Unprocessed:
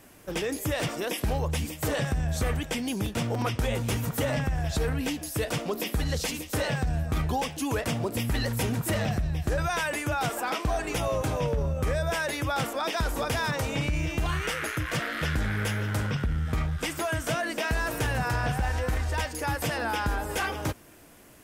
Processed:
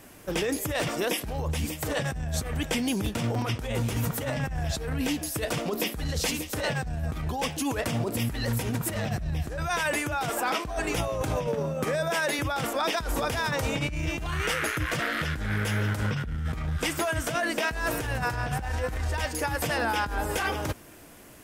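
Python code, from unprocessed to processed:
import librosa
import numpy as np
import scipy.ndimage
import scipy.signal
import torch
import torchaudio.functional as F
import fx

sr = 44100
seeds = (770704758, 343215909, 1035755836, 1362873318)

y = fx.highpass(x, sr, hz=150.0, slope=24, at=(11.47, 12.39))
y = fx.over_compress(y, sr, threshold_db=-29.0, ratio=-0.5)
y = y * 10.0 ** (1.5 / 20.0)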